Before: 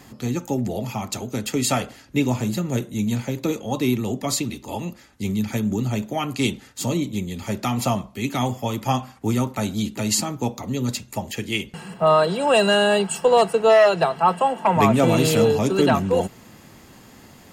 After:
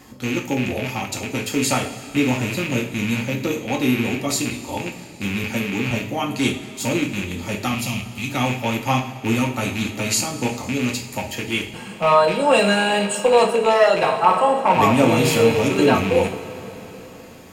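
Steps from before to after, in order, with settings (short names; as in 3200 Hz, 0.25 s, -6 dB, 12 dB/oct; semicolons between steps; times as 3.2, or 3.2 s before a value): rattling part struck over -27 dBFS, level -17 dBFS; 5.44–5.91 HPF 130 Hz; 7.74–8.3 band shelf 710 Hz -14 dB 3 oct; 13.93–14.73 flutter echo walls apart 8.9 m, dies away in 0.48 s; two-slope reverb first 0.39 s, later 4.2 s, from -18 dB, DRR 0.5 dB; gain -1 dB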